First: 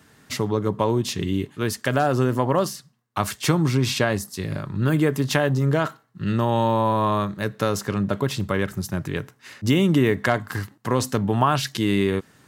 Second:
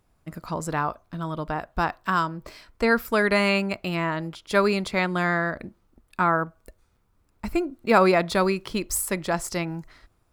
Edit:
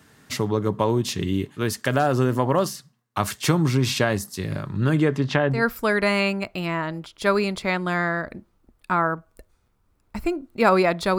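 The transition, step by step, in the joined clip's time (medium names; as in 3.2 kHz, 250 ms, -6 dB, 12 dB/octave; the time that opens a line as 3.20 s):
first
4.80–5.65 s: low-pass 11 kHz -> 1.6 kHz
5.57 s: go over to second from 2.86 s, crossfade 0.16 s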